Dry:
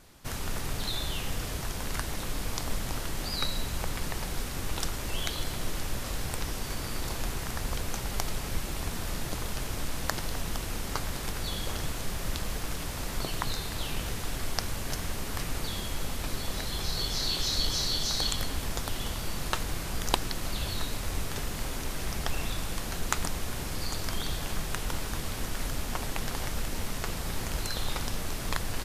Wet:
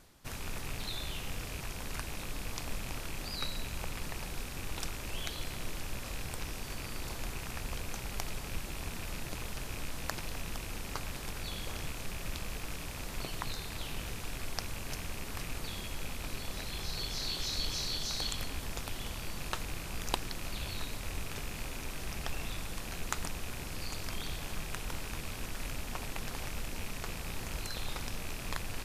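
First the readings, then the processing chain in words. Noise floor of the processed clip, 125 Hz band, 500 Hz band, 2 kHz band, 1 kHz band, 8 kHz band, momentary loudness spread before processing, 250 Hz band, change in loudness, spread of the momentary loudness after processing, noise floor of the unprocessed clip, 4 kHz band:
−42 dBFS, −6.5 dB, −6.5 dB, −4.0 dB, −6.5 dB, −6.5 dB, 5 LU, −6.5 dB, −6.0 dB, 4 LU, −36 dBFS, −6.0 dB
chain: loose part that buzzes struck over −36 dBFS, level −27 dBFS
reversed playback
upward compression, threshold −39 dBFS
reversed playback
level −6.5 dB

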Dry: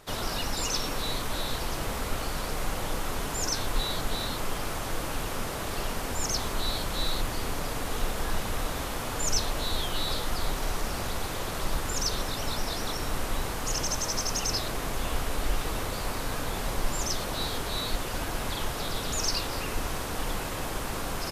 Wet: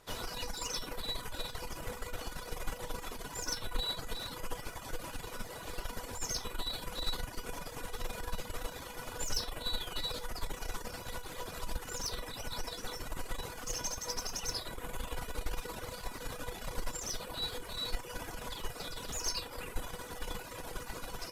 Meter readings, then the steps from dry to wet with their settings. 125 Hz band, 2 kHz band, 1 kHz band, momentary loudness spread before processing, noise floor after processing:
−11.0 dB, −9.0 dB, −10.0 dB, 5 LU, −46 dBFS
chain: harmonic generator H 4 −16 dB, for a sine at −13.5 dBFS
reverb reduction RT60 1.7 s
tuned comb filter 490 Hz, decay 0.22 s, harmonics all, mix 80%
level +4 dB

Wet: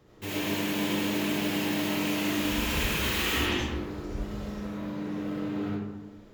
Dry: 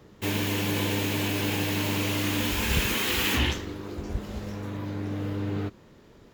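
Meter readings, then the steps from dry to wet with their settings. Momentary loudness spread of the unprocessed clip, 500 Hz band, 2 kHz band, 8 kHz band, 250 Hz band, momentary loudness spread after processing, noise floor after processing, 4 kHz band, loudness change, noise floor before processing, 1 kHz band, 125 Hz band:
11 LU, −1.0 dB, −1.5 dB, −3.0 dB, +1.0 dB, 10 LU, −50 dBFS, −2.0 dB, −1.5 dB, −53 dBFS, −1.0 dB, −6.0 dB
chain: comb and all-pass reverb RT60 1.2 s, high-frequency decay 0.45×, pre-delay 30 ms, DRR −5.5 dB
level −7.5 dB

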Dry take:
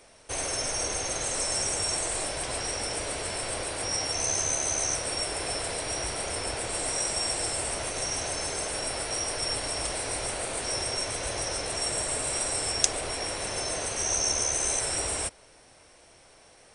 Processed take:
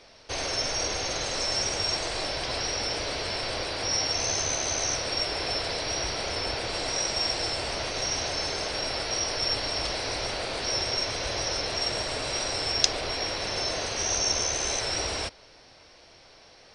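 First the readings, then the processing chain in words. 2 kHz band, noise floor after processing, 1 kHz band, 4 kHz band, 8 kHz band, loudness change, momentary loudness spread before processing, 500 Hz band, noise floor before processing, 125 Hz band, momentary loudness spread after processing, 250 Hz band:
+2.5 dB, −54 dBFS, +1.5 dB, +5.0 dB, −4.0 dB, +1.0 dB, 5 LU, +1.5 dB, −56 dBFS, +1.5 dB, 5 LU, +1.5 dB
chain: high shelf with overshoot 6,500 Hz −11.5 dB, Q 3
level +1.5 dB

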